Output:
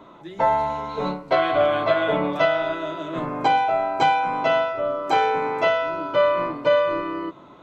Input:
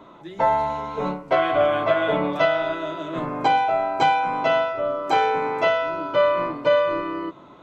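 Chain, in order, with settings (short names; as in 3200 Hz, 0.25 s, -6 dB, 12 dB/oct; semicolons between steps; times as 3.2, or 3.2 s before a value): 0.89–2.04 bell 4100 Hz +10 dB 0.26 oct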